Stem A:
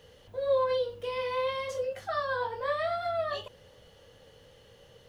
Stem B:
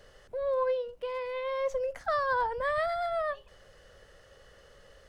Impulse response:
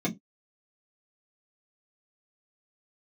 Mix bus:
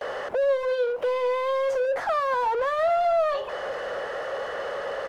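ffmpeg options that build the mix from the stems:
-filter_complex "[0:a]highpass=280,volume=-3.5dB[link_01];[1:a]acrossover=split=320[link_02][link_03];[link_03]acompressor=threshold=-39dB:ratio=4[link_04];[link_02][link_04]amix=inputs=2:normalize=0,asplit=2[link_05][link_06];[link_06]highpass=frequency=720:poles=1,volume=35dB,asoftclip=type=tanh:threshold=-25dB[link_07];[link_05][link_07]amix=inputs=2:normalize=0,lowpass=frequency=1800:poles=1,volume=-6dB,equalizer=frequency=760:width_type=o:width=2.5:gain=13,adelay=11,volume=-4dB[link_08];[link_01][link_08]amix=inputs=2:normalize=0"

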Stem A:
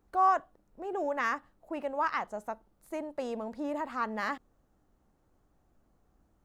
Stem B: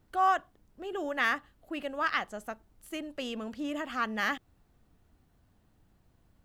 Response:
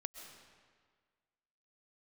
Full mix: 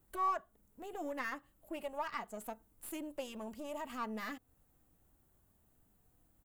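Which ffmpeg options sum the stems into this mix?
-filter_complex "[0:a]asplit=2[link_01][link_02];[link_02]adelay=3.2,afreqshift=0.59[link_03];[link_01][link_03]amix=inputs=2:normalize=1,volume=-6dB[link_04];[1:a]acompressor=threshold=-38dB:ratio=3,aexciter=amount=4.1:drive=6.6:freq=7000,aeval=exprs='(tanh(56.2*val(0)+0.65)-tanh(0.65))/56.2':channel_layout=same,volume=-4.5dB[link_05];[link_04][link_05]amix=inputs=2:normalize=0"

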